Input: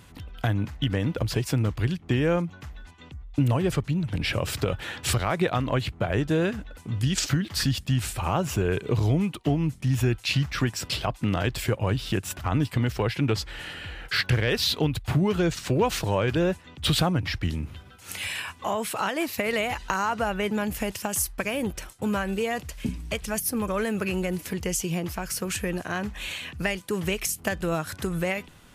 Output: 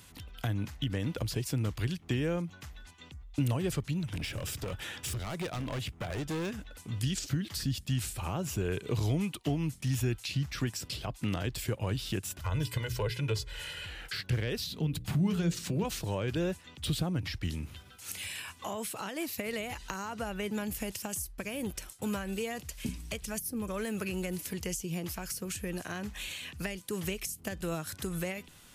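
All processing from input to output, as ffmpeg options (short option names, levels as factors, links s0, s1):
-filter_complex "[0:a]asettb=1/sr,asplit=3[s0][s1][s2];[s0]atrim=end=4.054[s3];[s1]atrim=start=4.05:end=6.61,asetpts=PTS-STARTPTS,afade=t=in:d=0.004:c=qsin,afade=t=out:st=2.556:d=0.004:c=qsin,bandreject=f=4200:w=9.2,asoftclip=type=hard:threshold=0.0596[s4];[s2]atrim=start=6.606[s5];[s3][s4]acrossfade=d=0.004:c1=hsin:c2=qsin[s6];[s6][s5]acrossfade=d=0.004:c1=qsin:c2=hsin,asettb=1/sr,asplit=3[s7][s8][s9];[s7]atrim=end=12.414[s10];[s8]atrim=start=12.41:end=13.86,asetpts=PTS-STARTPTS,afade=t=in:d=0.004:c=qsin,afade=t=out:st=1.446:d=0.004:c=qsin,equalizer=f=350:t=o:w=0.42:g=-5.5,bandreject=f=60:t=h:w=6,bandreject=f=120:t=h:w=6,bandreject=f=180:t=h:w=6,bandreject=f=240:t=h:w=6,bandreject=f=300:t=h:w=6,bandreject=f=360:t=h:w=6,bandreject=f=420:t=h:w=6,aecho=1:1:2:0.79,atrim=end_sample=63945[s11];[s9]atrim=start=13.856[s12];[s10][s11]acrossfade=d=0.004:c1=hsin:c2=qsin[s13];[s13][s12]acrossfade=d=0.004:c1=qsin:c2=hsin,asettb=1/sr,asplit=3[s14][s15][s16];[s14]atrim=end=14.664[s17];[s15]atrim=start=14.66:end=15.85,asetpts=PTS-STARTPTS,afade=t=in:d=0.004:c=qsin,afade=t=out:st=1.186:d=0.004:c=qsin,equalizer=f=180:w=1.9:g=13,bandreject=f=60:t=h:w=6,bandreject=f=120:t=h:w=6,bandreject=f=180:t=h:w=6,bandreject=f=240:t=h:w=6,bandreject=f=300:t=h:w=6,bandreject=f=360:t=h:w=6,bandreject=f=420:t=h:w=6,bandreject=f=480:t=h:w=6,bandreject=f=540:t=h:w=6,acompressor=threshold=0.0355:ratio=1.5:attack=3.2:release=140:knee=1:detection=peak[s18];[s16]atrim=start=15.846[s19];[s17][s18]acrossfade=d=0.004:c1=hsin:c2=qsin[s20];[s20][s19]acrossfade=d=0.004:c1=qsin:c2=hsin,highshelf=f=2900:g=11.5,acrossover=split=490[s21][s22];[s22]acompressor=threshold=0.0282:ratio=4[s23];[s21][s23]amix=inputs=2:normalize=0,volume=0.447"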